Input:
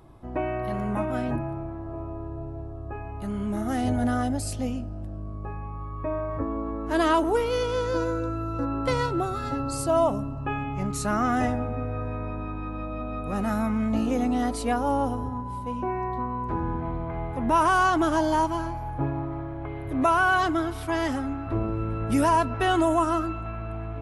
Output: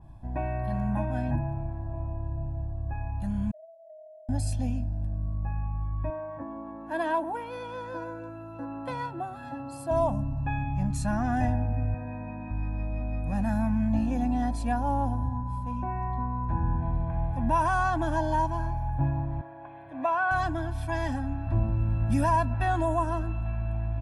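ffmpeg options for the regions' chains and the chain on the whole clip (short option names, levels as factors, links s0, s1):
-filter_complex "[0:a]asettb=1/sr,asplit=3[s0][s1][s2];[s0]atrim=end=3.514[s3];[s1]atrim=start=3.51:end=4.29,asetpts=PTS-STARTPTS,afade=t=in:d=0.004:c=qsin,afade=t=out:st=0.776:d=0.004:c=qsin,asuperpass=centerf=630:order=20:qfactor=6.5,acompressor=threshold=0.00501:ratio=2:attack=3.2:release=140:knee=1:detection=peak[s4];[s2]atrim=start=4.286[s5];[s3][s4]acrossfade=d=0.004:c1=hsin:c2=qsin[s6];[s6][s5]acrossfade=d=0.004:c1=qsin:c2=hsin,asettb=1/sr,asplit=3[s7][s8][s9];[s7]atrim=end=6.104[s10];[s8]atrim=start=6.1:end=9.91,asetpts=PTS-STARTPTS,afade=t=in:d=0.004:c=qsin,afade=t=out:st=3.806:d=0.004:c=qsin,highpass=280,equalizer=f=6100:t=o:w=1.5:g=-12.5[s11];[s9]atrim=start=9.906[s12];[s10][s11]acrossfade=d=0.004:c1=hsin:c2=qsin[s13];[s13][s12]acrossfade=d=0.004:c1=qsin:c2=hsin,asettb=1/sr,asplit=3[s14][s15][s16];[s14]atrim=end=11.944[s17];[s15]atrim=start=11.94:end=12.51,asetpts=PTS-STARTPTS,afade=t=in:d=0.004:c=qsin,afade=t=out:st=0.566:d=0.004:c=qsin,highpass=140,lowpass=3500,aecho=1:1:4.3:0.32,atrim=end_sample=25137[s18];[s16]atrim=start=12.506[s19];[s17][s18]acrossfade=d=0.004:c1=hsin:c2=qsin[s20];[s20][s19]acrossfade=d=0.004:c1=qsin:c2=hsin,asettb=1/sr,asplit=3[s21][s22][s23];[s21]atrim=end=19.414[s24];[s22]atrim=start=19.41:end=20.31,asetpts=PTS-STARTPTS,afade=t=in:d=0.004:c=qsin,afade=t=out:st=0.896:d=0.004:c=qsin,highpass=160,lowpass=7100,acrossover=split=310 3400:gain=0.158 1 0.224[s25][s26][s27];[s25][s26][s27]amix=inputs=3:normalize=0[s28];[s23]atrim=start=20.306[s29];[s24][s28]acrossfade=d=0.004:c1=hsin:c2=qsin[s30];[s30][s29]acrossfade=d=0.004:c1=qsin:c2=hsin,lowshelf=f=210:g=9,aecho=1:1:1.2:0.95,adynamicequalizer=threshold=0.0126:dfrequency=2700:dqfactor=0.7:tfrequency=2700:tqfactor=0.7:attack=5:release=100:ratio=0.375:range=3:mode=cutabove:tftype=highshelf,volume=0.398"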